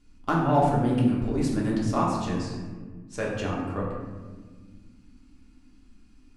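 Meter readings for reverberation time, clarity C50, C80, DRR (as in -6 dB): no single decay rate, 1.5 dB, 3.5 dB, -4.5 dB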